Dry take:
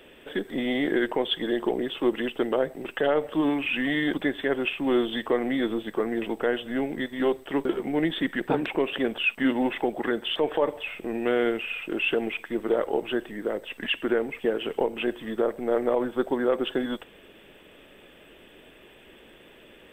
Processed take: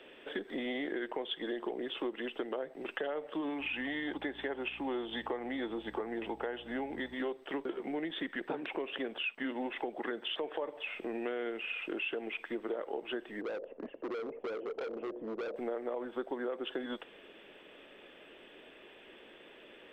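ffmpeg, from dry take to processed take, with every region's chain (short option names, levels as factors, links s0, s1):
-filter_complex "[0:a]asettb=1/sr,asplit=3[s0][s1][s2];[s0]atrim=end=3.594[s3];[s1]atrim=start=3.59:end=7.14,asetpts=PTS-STARTPTS,afade=t=in:d=0.004:c=qsin,afade=t=out:st=3.546:d=0.004:c=qsin,equalizer=f=850:w=6.4:g=9.5,aeval=exprs='val(0)+0.01*(sin(2*PI*60*n/s)+sin(2*PI*2*60*n/s)/2+sin(2*PI*3*60*n/s)/3+sin(2*PI*4*60*n/s)/4+sin(2*PI*5*60*n/s)/5)':c=same[s4];[s2]atrim=start=7.136[s5];[s3][s4]acrossfade=d=0.004:c1=hsin:c2=qsin[s6];[s6][s5]acrossfade=d=0.004:c1=qsin:c2=hsin,asettb=1/sr,asplit=3[s7][s8][s9];[s7]atrim=end=13.414[s10];[s8]atrim=start=13.41:end=15.56,asetpts=PTS-STARTPTS,afade=t=in:d=0.004:c=qsin,afade=t=out:st=2.146:d=0.004:c=qsin,acompressor=threshold=0.02:ratio=1.5:attack=3.2:release=140:knee=1:detection=peak,lowpass=f=540:t=q:w=2.9,volume=31.6,asoftclip=hard,volume=0.0316[s11];[s9]atrim=start=15.556[s12];[s10][s11]acrossfade=d=0.004:c1=hsin:c2=qsin[s13];[s13][s12]acrossfade=d=0.004:c1=qsin:c2=hsin,acrossover=split=240 5600:gain=0.224 1 0.158[s14][s15][s16];[s14][s15][s16]amix=inputs=3:normalize=0,acompressor=threshold=0.0251:ratio=5,volume=0.75"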